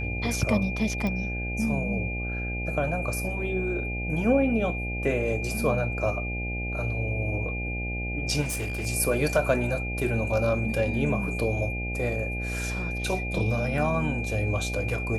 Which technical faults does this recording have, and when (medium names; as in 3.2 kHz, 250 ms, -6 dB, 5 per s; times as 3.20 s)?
buzz 60 Hz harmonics 14 -32 dBFS
whine 2.4 kHz -33 dBFS
1.07 s: pop -18 dBFS
8.41–8.87 s: clipped -26.5 dBFS